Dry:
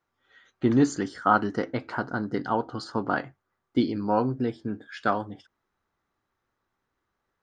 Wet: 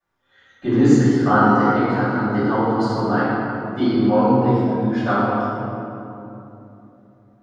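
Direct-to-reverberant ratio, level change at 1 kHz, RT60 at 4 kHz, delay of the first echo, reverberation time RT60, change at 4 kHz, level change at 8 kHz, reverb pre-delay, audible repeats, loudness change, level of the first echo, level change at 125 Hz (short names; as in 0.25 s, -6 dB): -18.0 dB, +8.0 dB, 1.5 s, none, 3.0 s, +5.5 dB, n/a, 3 ms, none, +9.0 dB, none, +12.0 dB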